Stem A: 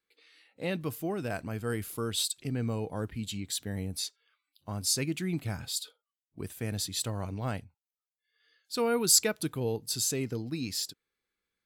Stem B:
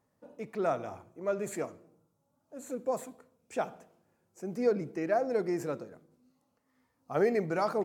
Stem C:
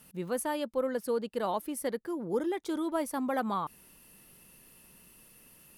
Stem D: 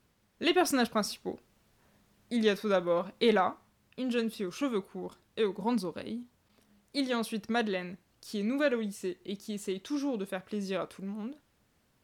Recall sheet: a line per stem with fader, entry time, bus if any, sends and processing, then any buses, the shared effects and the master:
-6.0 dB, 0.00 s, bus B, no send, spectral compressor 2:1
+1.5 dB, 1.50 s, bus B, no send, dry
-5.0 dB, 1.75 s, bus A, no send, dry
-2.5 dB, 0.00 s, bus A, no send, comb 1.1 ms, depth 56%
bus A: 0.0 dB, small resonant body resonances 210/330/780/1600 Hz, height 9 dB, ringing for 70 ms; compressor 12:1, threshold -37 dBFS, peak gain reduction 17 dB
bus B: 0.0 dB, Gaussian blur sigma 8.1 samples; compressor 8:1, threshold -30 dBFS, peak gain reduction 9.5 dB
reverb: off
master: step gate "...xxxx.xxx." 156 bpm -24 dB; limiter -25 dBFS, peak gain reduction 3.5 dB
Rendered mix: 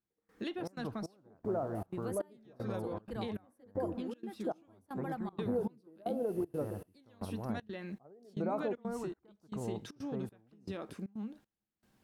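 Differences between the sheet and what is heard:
stem B: entry 1.50 s -> 0.90 s; stem D: missing comb 1.1 ms, depth 56%

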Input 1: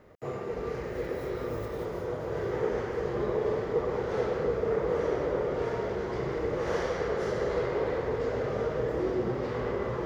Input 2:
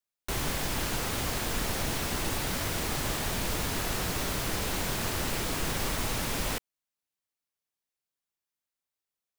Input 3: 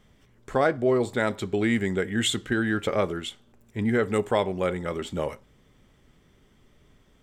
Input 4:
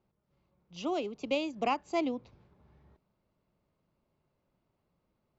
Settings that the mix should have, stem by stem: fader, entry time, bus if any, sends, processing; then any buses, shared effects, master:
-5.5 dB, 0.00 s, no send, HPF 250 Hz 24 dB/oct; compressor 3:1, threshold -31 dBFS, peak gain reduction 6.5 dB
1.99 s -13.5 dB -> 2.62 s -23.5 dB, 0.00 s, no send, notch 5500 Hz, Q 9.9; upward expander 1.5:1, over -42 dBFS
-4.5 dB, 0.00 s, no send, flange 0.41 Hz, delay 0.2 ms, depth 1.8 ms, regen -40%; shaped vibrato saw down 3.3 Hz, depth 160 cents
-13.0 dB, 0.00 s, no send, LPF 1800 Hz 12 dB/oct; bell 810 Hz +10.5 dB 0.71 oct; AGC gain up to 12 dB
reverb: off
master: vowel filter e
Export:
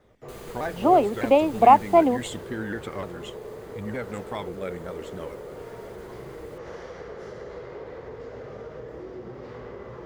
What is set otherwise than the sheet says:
stem 1: missing HPF 250 Hz 24 dB/oct; stem 4 -13.0 dB -> -1.0 dB; master: missing vowel filter e

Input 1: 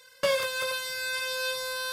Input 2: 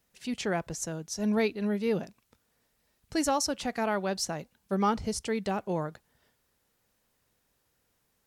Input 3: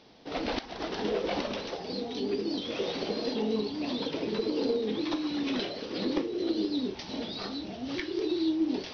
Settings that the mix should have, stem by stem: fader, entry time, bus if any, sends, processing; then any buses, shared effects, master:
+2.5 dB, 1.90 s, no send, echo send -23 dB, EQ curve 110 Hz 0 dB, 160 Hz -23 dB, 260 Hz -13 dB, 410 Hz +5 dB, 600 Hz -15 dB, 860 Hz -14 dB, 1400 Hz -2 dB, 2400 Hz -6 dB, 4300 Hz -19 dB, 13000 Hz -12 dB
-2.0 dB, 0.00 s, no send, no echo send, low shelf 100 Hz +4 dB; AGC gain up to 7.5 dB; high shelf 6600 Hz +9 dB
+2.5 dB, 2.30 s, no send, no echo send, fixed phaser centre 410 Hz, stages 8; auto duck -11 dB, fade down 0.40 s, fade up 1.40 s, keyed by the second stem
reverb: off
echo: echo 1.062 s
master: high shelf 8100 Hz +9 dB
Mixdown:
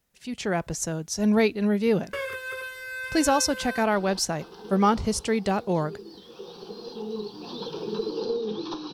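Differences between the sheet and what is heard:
stem 2: missing high shelf 6600 Hz +9 dB; stem 3: entry 2.30 s -> 3.60 s; master: missing high shelf 8100 Hz +9 dB

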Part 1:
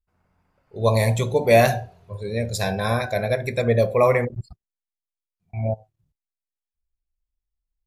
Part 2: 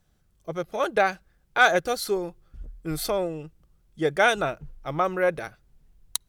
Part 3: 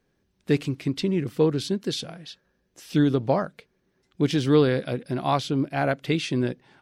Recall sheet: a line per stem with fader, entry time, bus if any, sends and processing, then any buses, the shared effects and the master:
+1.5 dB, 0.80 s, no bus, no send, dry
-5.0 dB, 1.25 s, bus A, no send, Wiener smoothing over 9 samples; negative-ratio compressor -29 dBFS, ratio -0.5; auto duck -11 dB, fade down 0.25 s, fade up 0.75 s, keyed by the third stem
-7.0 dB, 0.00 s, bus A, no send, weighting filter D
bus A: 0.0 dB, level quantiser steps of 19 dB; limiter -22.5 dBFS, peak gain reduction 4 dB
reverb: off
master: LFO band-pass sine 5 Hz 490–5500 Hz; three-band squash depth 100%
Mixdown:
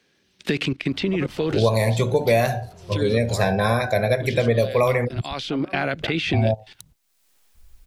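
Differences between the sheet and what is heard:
stem 2: entry 1.25 s -> 0.65 s; master: missing LFO band-pass sine 5 Hz 490–5500 Hz

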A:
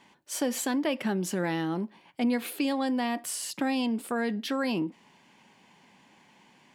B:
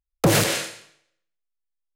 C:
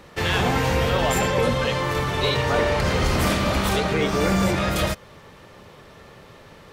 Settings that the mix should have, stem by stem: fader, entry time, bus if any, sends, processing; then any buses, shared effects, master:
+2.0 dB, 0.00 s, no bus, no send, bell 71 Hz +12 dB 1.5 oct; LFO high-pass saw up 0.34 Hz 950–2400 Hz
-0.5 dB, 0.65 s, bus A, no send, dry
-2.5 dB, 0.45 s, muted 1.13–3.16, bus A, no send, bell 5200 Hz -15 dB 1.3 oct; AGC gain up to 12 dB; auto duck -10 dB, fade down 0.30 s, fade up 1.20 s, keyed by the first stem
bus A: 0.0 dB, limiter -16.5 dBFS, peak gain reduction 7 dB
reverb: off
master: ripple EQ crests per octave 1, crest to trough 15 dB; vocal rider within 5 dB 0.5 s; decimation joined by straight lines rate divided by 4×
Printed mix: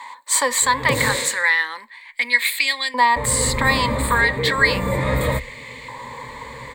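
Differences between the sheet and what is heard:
stem A +2.0 dB -> +12.0 dB; master: missing decimation joined by straight lines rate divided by 4×

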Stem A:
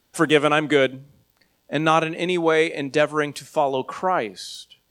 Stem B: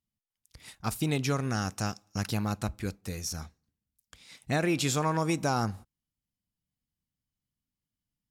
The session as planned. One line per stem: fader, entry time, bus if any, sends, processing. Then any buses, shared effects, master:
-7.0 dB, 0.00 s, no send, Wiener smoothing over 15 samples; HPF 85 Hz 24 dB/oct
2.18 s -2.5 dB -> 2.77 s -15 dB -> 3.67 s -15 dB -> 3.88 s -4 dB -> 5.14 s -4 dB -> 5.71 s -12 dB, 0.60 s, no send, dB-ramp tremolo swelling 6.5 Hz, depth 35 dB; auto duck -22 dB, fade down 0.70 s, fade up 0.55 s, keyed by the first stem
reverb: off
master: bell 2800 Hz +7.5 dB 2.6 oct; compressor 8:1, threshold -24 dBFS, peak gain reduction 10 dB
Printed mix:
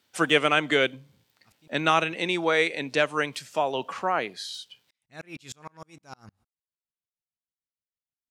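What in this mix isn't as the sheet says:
stem A: missing Wiener smoothing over 15 samples; master: missing compressor 8:1, threshold -24 dBFS, peak gain reduction 10 dB

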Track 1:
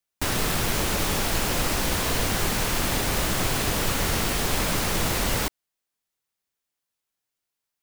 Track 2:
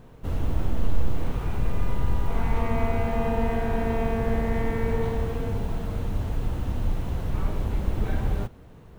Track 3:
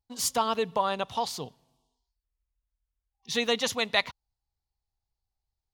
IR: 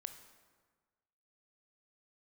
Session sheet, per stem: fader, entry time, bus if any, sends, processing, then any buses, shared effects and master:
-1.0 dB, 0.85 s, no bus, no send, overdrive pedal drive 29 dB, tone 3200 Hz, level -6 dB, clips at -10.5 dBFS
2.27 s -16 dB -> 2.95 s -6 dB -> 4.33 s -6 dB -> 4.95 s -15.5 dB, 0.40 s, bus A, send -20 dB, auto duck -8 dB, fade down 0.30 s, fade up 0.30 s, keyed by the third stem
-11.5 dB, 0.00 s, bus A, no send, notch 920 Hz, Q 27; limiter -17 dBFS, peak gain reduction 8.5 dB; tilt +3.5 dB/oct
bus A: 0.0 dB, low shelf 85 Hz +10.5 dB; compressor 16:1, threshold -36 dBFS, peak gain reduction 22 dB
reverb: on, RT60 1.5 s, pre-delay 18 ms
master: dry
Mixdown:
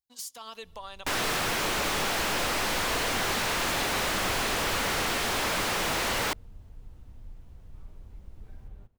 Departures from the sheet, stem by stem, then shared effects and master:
stem 1 -1.0 dB -> -8.5 dB; stem 2 -16.0 dB -> -28.0 dB

